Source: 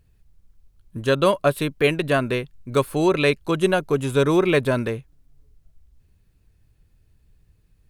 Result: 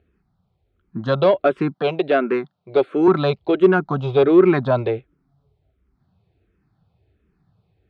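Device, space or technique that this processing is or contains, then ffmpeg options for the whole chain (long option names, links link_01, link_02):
barber-pole phaser into a guitar amplifier: -filter_complex "[0:a]asplit=2[link_01][link_02];[link_02]afreqshift=-1.4[link_03];[link_01][link_03]amix=inputs=2:normalize=1,asoftclip=type=tanh:threshold=-15dB,highpass=100,equalizer=frequency=190:width_type=q:width=4:gain=5,equalizer=frequency=370:width_type=q:width=4:gain=6,equalizer=frequency=740:width_type=q:width=4:gain=9,equalizer=frequency=1300:width_type=q:width=4:gain=5,equalizer=frequency=1800:width_type=q:width=4:gain=-4,equalizer=frequency=2800:width_type=q:width=4:gain=-6,lowpass=frequency=3700:width=0.5412,lowpass=frequency=3700:width=1.3066,asettb=1/sr,asplit=3[link_04][link_05][link_06];[link_04]atrim=end=1.744[link_07];[link_05]atrim=start=1.74:end=3.08,asetpts=PTS-STARTPTS,afade=type=in:duration=0.004:curve=qsin,afade=type=out:start_time=1.336:duration=0.004:curve=qsin,highpass=230[link_08];[link_06]atrim=start=3.076[link_09];[link_07][link_08]acrossfade=duration=0.004:curve1=hsin:curve2=qsin[link_10];[link_10][link_09]acrossfade=duration=0.004:curve1=qsin:curve2=hsin,volume=4.5dB"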